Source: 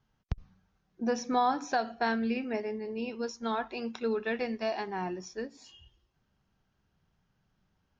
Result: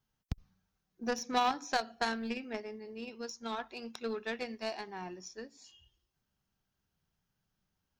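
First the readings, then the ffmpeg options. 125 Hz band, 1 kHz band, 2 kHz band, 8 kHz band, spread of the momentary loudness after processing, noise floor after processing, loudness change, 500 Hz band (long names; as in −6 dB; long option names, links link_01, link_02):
−5.0 dB, −4.0 dB, −2.5 dB, can't be measured, 14 LU, −84 dBFS, −4.5 dB, −6.5 dB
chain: -af "crystalizer=i=2.5:c=0,aeval=exprs='0.15*(cos(1*acos(clip(val(0)/0.15,-1,1)))-cos(1*PI/2))+0.0335*(cos(3*acos(clip(val(0)/0.15,-1,1)))-cos(3*PI/2))':channel_layout=same"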